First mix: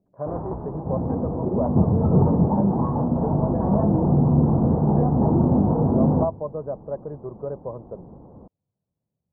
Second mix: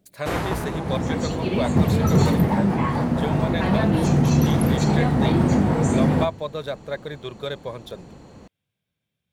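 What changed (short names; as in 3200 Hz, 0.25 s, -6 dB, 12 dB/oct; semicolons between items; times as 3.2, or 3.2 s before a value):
first sound +5.0 dB; master: remove steep low-pass 1000 Hz 36 dB/oct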